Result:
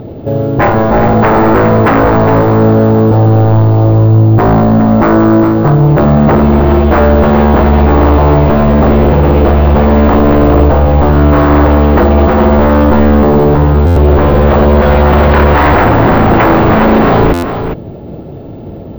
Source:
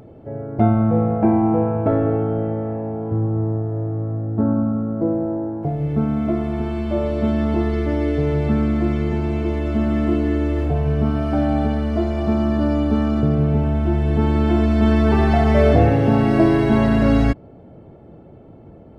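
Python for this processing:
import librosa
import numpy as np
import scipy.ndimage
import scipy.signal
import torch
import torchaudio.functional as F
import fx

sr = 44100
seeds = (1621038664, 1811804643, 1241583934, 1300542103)

p1 = fx.cvsd(x, sr, bps=32000)
p2 = scipy.signal.sosfilt(scipy.signal.butter(4, 3500.0, 'lowpass', fs=sr, output='sos'), p1)
p3 = fx.peak_eq(p2, sr, hz=2100.0, db=-6.5, octaves=2.0)
p4 = fx.rider(p3, sr, range_db=4, speed_s=0.5)
p5 = p3 + (p4 * librosa.db_to_amplitude(2.0))
p6 = fx.fold_sine(p5, sr, drive_db=14, ceiling_db=2.0)
p7 = p6 + fx.echo_single(p6, sr, ms=409, db=-8.5, dry=0)
p8 = np.repeat(p7[::2], 2)[:len(p7)]
p9 = fx.buffer_glitch(p8, sr, at_s=(13.86, 17.33), block=512, repeats=8)
y = p9 * librosa.db_to_amplitude(-6.0)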